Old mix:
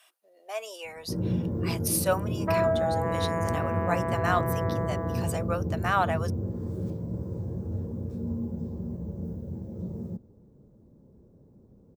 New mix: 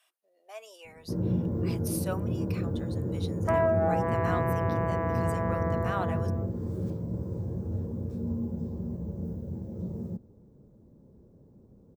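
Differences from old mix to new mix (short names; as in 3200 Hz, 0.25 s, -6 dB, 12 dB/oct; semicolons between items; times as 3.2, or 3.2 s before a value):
speech -9.5 dB; second sound: entry +1.00 s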